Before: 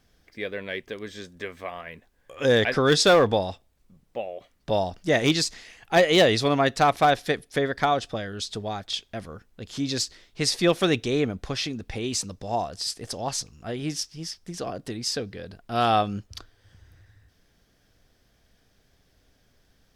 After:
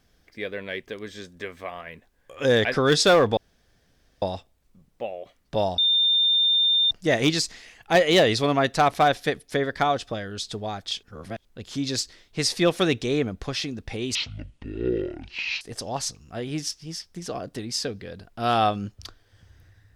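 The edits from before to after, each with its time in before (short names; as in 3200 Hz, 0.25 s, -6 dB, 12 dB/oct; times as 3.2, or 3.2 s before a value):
3.37 insert room tone 0.85 s
4.93 add tone 3610 Hz -17 dBFS 1.13 s
9.05–9.47 reverse
12.17–12.93 speed 52%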